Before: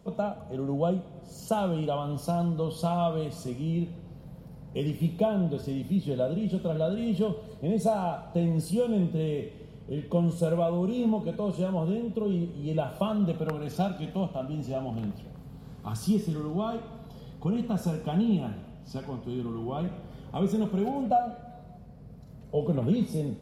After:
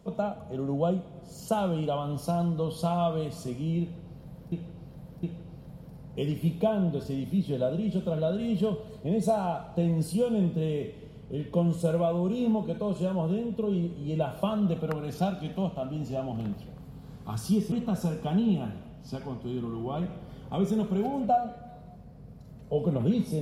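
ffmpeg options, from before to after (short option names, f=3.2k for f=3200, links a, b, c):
-filter_complex "[0:a]asplit=4[a][b][c][d];[a]atrim=end=4.522[e];[b]atrim=start=3.808:end=4.522[f];[c]atrim=start=3.808:end=16.302[g];[d]atrim=start=17.538[h];[e][f]acrossfade=d=0.004:c1=hsin:c2=hsin[i];[i][g]acrossfade=d=0.004:c1=hsin:c2=hsin[j];[j][h]acrossfade=d=0.004:c1=hsin:c2=hsin"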